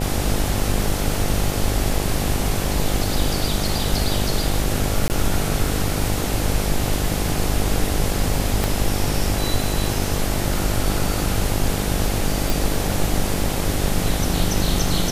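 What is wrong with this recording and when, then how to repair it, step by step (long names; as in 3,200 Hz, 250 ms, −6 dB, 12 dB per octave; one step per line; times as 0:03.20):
mains buzz 50 Hz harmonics 17 −25 dBFS
0:05.08–0:05.10: drop-out 19 ms
0:08.64: click
0:12.50: click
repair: click removal
hum removal 50 Hz, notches 17
repair the gap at 0:05.08, 19 ms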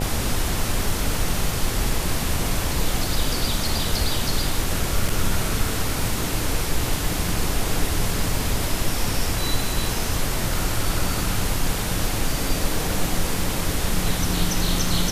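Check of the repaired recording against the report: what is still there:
0:08.64: click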